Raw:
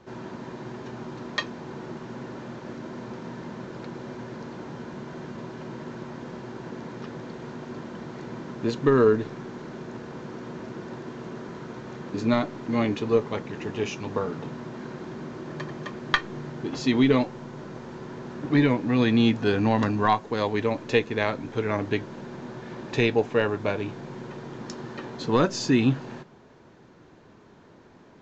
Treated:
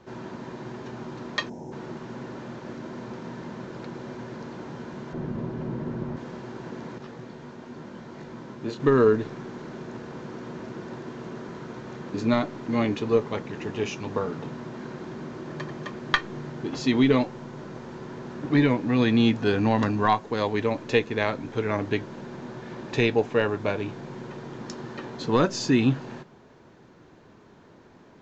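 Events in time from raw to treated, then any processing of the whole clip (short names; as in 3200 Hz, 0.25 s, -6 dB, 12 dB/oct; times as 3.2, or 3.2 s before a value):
1.49–1.72 spectral gain 990–5100 Hz -17 dB
5.13–6.17 tilt -3 dB/oct
6.98–8.8 detuned doubles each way 28 cents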